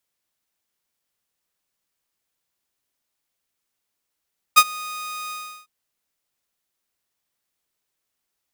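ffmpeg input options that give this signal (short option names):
-f lavfi -i "aevalsrc='0.668*(2*mod(1240*t,1)-1)':d=1.105:s=44100,afade=t=in:d=0.02,afade=t=out:st=0.02:d=0.052:silence=0.0668,afade=t=out:st=0.75:d=0.355"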